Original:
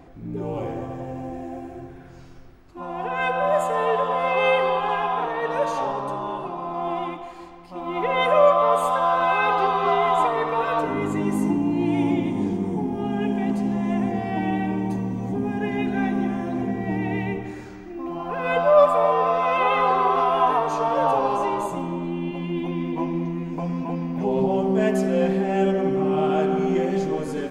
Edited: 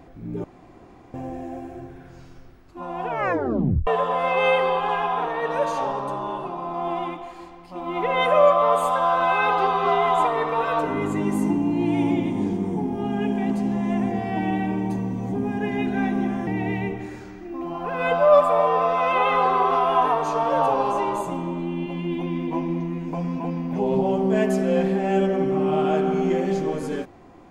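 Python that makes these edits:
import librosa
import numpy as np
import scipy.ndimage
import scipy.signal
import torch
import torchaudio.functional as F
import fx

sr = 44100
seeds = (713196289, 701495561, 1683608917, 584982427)

y = fx.edit(x, sr, fx.room_tone_fill(start_s=0.44, length_s=0.7),
    fx.tape_stop(start_s=3.06, length_s=0.81),
    fx.cut(start_s=16.47, length_s=0.45), tone=tone)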